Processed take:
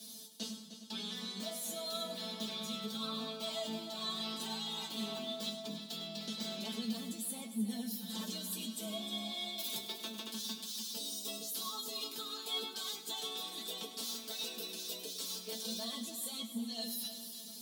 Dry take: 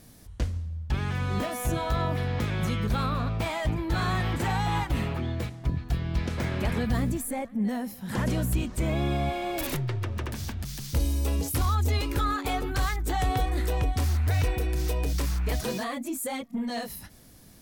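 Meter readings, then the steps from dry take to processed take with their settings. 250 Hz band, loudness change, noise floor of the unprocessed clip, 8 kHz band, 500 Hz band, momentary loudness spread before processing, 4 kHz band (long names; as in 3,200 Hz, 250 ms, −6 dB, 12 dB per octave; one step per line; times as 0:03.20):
−11.0 dB, −10.5 dB, −50 dBFS, −2.5 dB, −12.0 dB, 6 LU, +2.0 dB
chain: Butterworth high-pass 170 Hz 72 dB per octave
high shelf with overshoot 2,700 Hz +10 dB, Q 3
reversed playback
downward compressor 5 to 1, threshold −36 dBFS, peak gain reduction 15 dB
reversed playback
tuned comb filter 220 Hz, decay 0.16 s, harmonics all, mix 100%
echo machine with several playback heads 102 ms, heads first and third, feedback 53%, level −12 dB
level +6.5 dB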